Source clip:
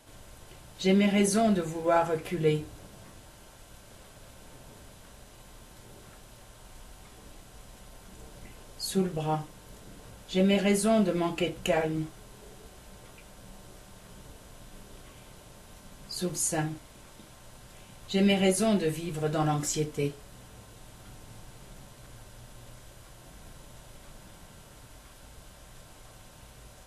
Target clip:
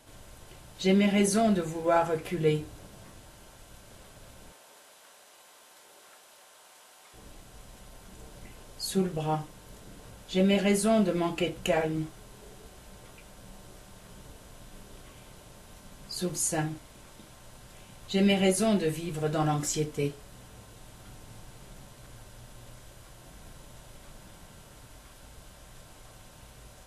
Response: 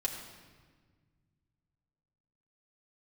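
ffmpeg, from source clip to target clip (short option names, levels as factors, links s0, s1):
-filter_complex "[0:a]asettb=1/sr,asplit=3[s0][s1][s2];[s0]atrim=end=4.524[s3];[s1]atrim=start=4.52:end=7.14,asetpts=PTS-STARTPTS,afade=t=in:d=0.004:c=qsin,afade=t=out:st=2.616:d=0.004:c=qsin,highpass=570[s4];[s2]atrim=start=7.136[s5];[s3][s4]acrossfade=d=0.004:c1=hsin:c2=qsin[s6];[s6][s5]acrossfade=d=0.004:c1=qsin:c2=hsin"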